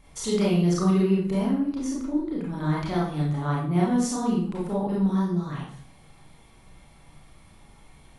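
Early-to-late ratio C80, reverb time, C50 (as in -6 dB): 6.5 dB, 0.60 s, 2.5 dB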